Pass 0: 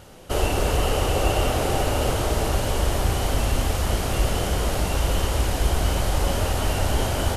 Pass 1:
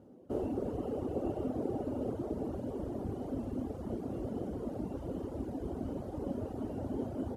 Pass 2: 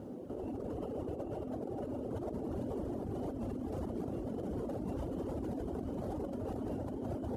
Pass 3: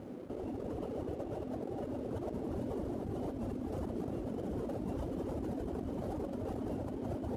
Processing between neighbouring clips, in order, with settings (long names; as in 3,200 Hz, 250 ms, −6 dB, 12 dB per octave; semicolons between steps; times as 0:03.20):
high-pass filter 120 Hz 12 dB per octave; reverb reduction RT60 1.1 s; drawn EQ curve 170 Hz 0 dB, 250 Hz +10 dB, 2,400 Hz −24 dB; level −9 dB
compressor whose output falls as the input rises −43 dBFS, ratio −1; brickwall limiter −36.5 dBFS, peak gain reduction 8 dB; level +6 dB
dead-zone distortion −58.5 dBFS; level +1 dB